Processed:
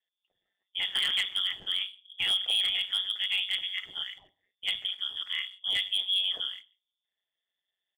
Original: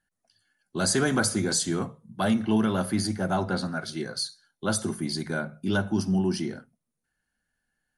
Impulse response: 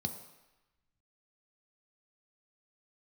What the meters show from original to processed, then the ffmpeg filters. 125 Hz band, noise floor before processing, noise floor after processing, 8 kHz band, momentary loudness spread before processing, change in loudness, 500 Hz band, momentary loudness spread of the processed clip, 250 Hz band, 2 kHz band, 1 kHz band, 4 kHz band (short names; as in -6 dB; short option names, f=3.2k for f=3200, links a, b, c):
under -30 dB, -83 dBFS, under -85 dBFS, -17.0 dB, 9 LU, -1.0 dB, under -25 dB, 11 LU, under -35 dB, -2.0 dB, -17.5 dB, +10.0 dB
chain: -filter_complex "[0:a]asplit=2[a][b];[b]adelay=145.8,volume=-25dB,highshelf=f=4k:g=-3.28[c];[a][c]amix=inputs=2:normalize=0,lowpass=f=3k:t=q:w=0.5098,lowpass=f=3k:t=q:w=0.6013,lowpass=f=3k:t=q:w=0.9,lowpass=f=3k:t=q:w=2.563,afreqshift=-3500,acrossover=split=240|1100|2400[d][e][f][g];[f]aeval=exprs='sgn(val(0))*max(abs(val(0))-0.00112,0)':c=same[h];[d][e][h][g]amix=inputs=4:normalize=0,tremolo=f=190:d=0.75,volume=20.5dB,asoftclip=hard,volume=-20.5dB"